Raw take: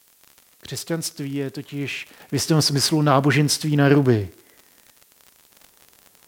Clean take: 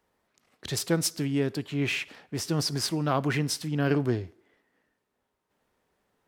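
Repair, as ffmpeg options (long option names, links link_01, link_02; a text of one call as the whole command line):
ffmpeg -i in.wav -af "adeclick=threshold=4,agate=range=-21dB:threshold=-49dB,asetnsamples=nb_out_samples=441:pad=0,asendcmd='2.2 volume volume -9.5dB',volume=0dB" out.wav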